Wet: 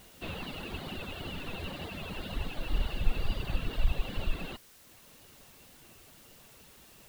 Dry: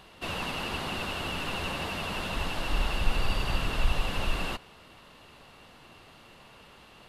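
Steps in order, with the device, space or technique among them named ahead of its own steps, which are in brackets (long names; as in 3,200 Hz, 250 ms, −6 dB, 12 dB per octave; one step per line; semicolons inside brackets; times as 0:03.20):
reverb reduction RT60 0.96 s
octave-band graphic EQ 1,000/4,000/8,000 Hz −6/+11/+3 dB
cassette deck with a dirty head (head-to-tape spacing loss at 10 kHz 40 dB; tape wow and flutter; white noise bed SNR 25 dB)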